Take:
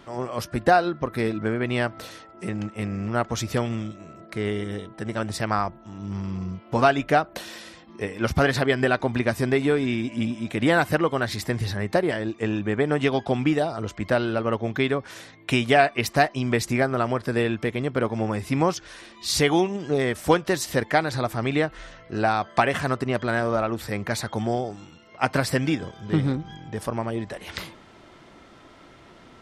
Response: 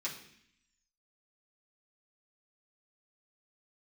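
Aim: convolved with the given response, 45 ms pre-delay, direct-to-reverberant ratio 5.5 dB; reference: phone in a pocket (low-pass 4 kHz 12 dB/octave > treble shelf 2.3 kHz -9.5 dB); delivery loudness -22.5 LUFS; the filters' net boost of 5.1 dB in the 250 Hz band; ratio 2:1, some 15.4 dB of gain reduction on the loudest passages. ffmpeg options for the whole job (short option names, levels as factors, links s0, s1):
-filter_complex "[0:a]equalizer=f=250:t=o:g=6.5,acompressor=threshold=0.00794:ratio=2,asplit=2[s0][s1];[1:a]atrim=start_sample=2205,adelay=45[s2];[s1][s2]afir=irnorm=-1:irlink=0,volume=0.422[s3];[s0][s3]amix=inputs=2:normalize=0,lowpass=4000,highshelf=f=2300:g=-9.5,volume=4.47"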